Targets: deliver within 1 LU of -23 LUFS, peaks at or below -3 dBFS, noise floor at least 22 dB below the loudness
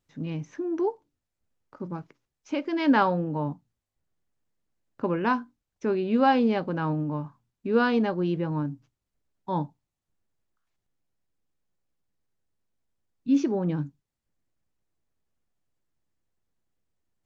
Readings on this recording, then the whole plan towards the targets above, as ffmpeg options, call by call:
loudness -27.0 LUFS; peak -10.0 dBFS; loudness target -23.0 LUFS
-> -af "volume=4dB"

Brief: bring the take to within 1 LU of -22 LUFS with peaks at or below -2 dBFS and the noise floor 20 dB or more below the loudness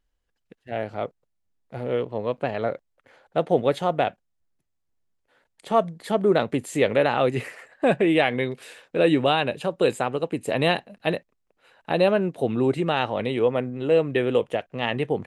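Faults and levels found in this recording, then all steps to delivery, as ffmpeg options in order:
loudness -24.0 LUFS; peak -6.0 dBFS; loudness target -22.0 LUFS
-> -af "volume=2dB"

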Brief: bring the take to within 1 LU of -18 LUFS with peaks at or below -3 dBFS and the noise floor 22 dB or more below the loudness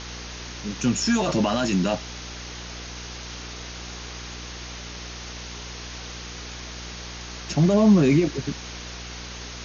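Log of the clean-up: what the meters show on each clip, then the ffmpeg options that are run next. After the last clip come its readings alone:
hum 60 Hz; harmonics up to 480 Hz; hum level -37 dBFS; noise floor -37 dBFS; noise floor target -49 dBFS; loudness -26.5 LUFS; peak -7.5 dBFS; loudness target -18.0 LUFS
-> -af "bandreject=f=60:t=h:w=4,bandreject=f=120:t=h:w=4,bandreject=f=180:t=h:w=4,bandreject=f=240:t=h:w=4,bandreject=f=300:t=h:w=4,bandreject=f=360:t=h:w=4,bandreject=f=420:t=h:w=4,bandreject=f=480:t=h:w=4"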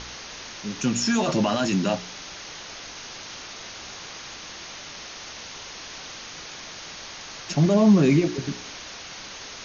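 hum none; noise floor -40 dBFS; noise floor target -47 dBFS
-> -af "afftdn=nr=7:nf=-40"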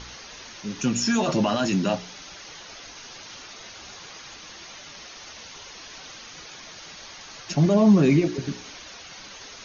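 noise floor -43 dBFS; noise floor target -44 dBFS
-> -af "afftdn=nr=6:nf=-43"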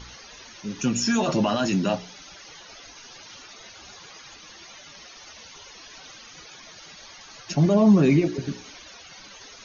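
noise floor -46 dBFS; loudness -22.0 LUFS; peak -8.0 dBFS; loudness target -18.0 LUFS
-> -af "volume=4dB"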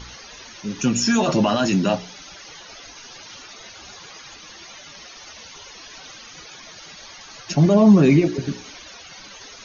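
loudness -18.0 LUFS; peak -4.0 dBFS; noise floor -42 dBFS

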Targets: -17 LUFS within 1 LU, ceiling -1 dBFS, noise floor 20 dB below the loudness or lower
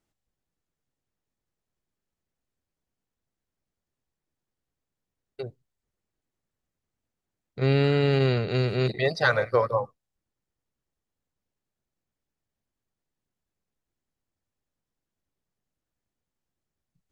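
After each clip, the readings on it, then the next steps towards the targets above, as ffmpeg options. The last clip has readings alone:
loudness -24.0 LUFS; peak -6.0 dBFS; loudness target -17.0 LUFS
-> -af "volume=7dB,alimiter=limit=-1dB:level=0:latency=1"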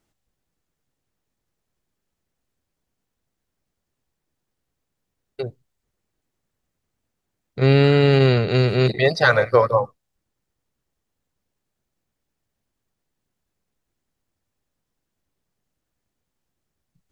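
loudness -17.5 LUFS; peak -1.0 dBFS; noise floor -80 dBFS

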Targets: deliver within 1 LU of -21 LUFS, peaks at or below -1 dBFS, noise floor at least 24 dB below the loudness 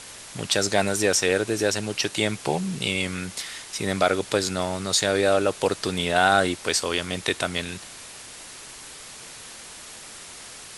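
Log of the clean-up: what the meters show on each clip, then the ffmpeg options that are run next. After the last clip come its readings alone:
noise floor -42 dBFS; noise floor target -48 dBFS; loudness -24.0 LUFS; peak -5.5 dBFS; loudness target -21.0 LUFS
-> -af "afftdn=nr=6:nf=-42"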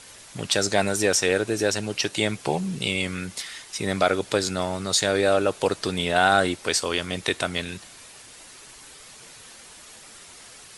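noise floor -46 dBFS; noise floor target -48 dBFS
-> -af "afftdn=nr=6:nf=-46"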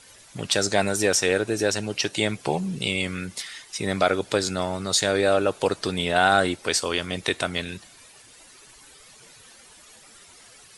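noise floor -51 dBFS; loudness -24.0 LUFS; peak -5.5 dBFS; loudness target -21.0 LUFS
-> -af "volume=3dB"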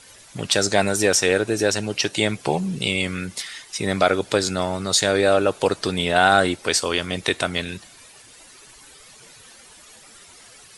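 loudness -21.0 LUFS; peak -2.5 dBFS; noise floor -48 dBFS

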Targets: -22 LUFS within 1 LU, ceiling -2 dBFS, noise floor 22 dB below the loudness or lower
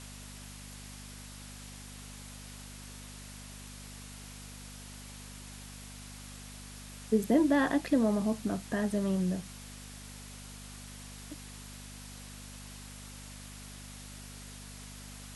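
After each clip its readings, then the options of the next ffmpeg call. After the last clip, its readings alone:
hum 50 Hz; harmonics up to 250 Hz; hum level -47 dBFS; noise floor -47 dBFS; noise floor target -59 dBFS; loudness -36.5 LUFS; peak -15.0 dBFS; loudness target -22.0 LUFS
-> -af "bandreject=f=50:t=h:w=4,bandreject=f=100:t=h:w=4,bandreject=f=150:t=h:w=4,bandreject=f=200:t=h:w=4,bandreject=f=250:t=h:w=4"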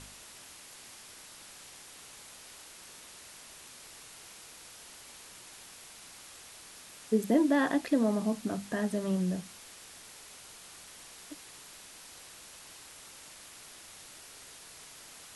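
hum none; noise floor -51 dBFS; noise floor target -53 dBFS
-> -af "afftdn=nr=6:nf=-51"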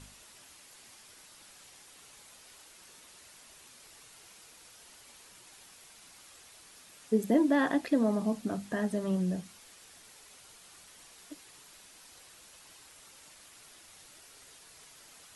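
noise floor -56 dBFS; loudness -30.0 LUFS; peak -15.0 dBFS; loudness target -22.0 LUFS
-> -af "volume=8dB"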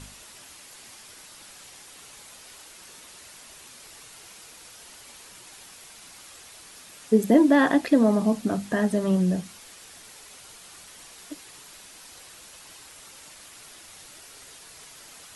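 loudness -22.0 LUFS; peak -7.0 dBFS; noise floor -48 dBFS

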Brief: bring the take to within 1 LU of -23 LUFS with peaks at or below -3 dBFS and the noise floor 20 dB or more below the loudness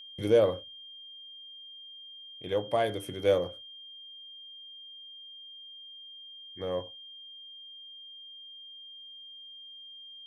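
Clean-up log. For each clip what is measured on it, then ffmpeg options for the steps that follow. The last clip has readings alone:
steady tone 3200 Hz; tone level -45 dBFS; loudness -35.0 LUFS; peak -12.5 dBFS; loudness target -23.0 LUFS
-> -af "bandreject=f=3.2k:w=30"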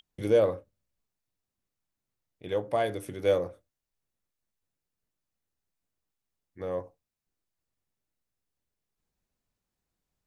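steady tone none; loudness -29.0 LUFS; peak -13.0 dBFS; loudness target -23.0 LUFS
-> -af "volume=6dB"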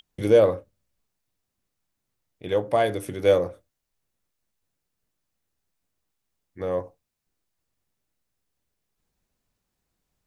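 loudness -23.0 LUFS; peak -7.0 dBFS; noise floor -81 dBFS

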